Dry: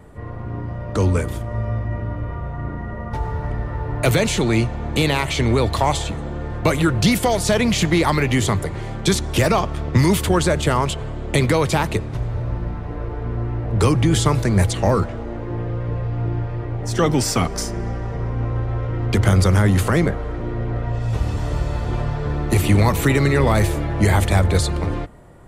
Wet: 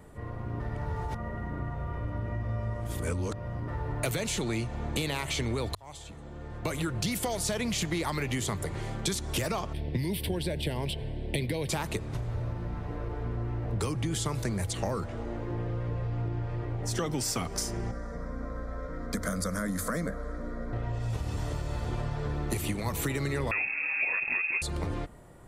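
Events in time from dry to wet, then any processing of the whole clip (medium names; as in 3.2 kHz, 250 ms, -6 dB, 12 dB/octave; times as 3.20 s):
0.60–3.68 s: reverse
5.75–7.40 s: fade in
9.73–11.69 s: static phaser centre 3 kHz, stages 4
17.91–20.73 s: static phaser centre 560 Hz, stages 8
23.51–24.62 s: frequency inversion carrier 2.6 kHz
whole clip: treble shelf 4.7 kHz +7 dB; compression, threshold -21 dBFS; hum notches 50/100 Hz; trim -6.5 dB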